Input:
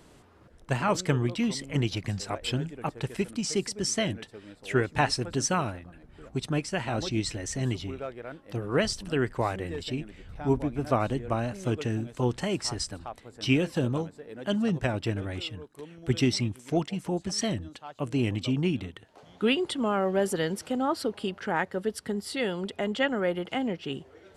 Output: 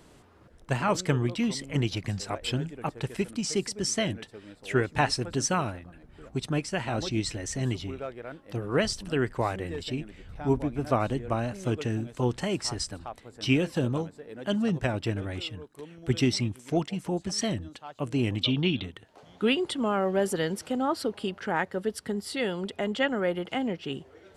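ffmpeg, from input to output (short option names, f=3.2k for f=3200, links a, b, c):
-filter_complex "[0:a]asettb=1/sr,asplit=3[a][b][c];[a]atrim=end=18.434[d];[b]atrim=start=18.43:end=18.84,asetpts=PTS-STARTPTS,afade=t=in:d=0.004:c=qsin,afade=t=out:st=0.406:d=0.004:c=qsin,lowpass=f=3.6k:t=q:w=5.8[e];[c]atrim=start=18.836[f];[d][e]acrossfade=d=0.004:c1=hsin:c2=qsin[g];[g][f]acrossfade=d=0.004:c1=qsin:c2=hsin"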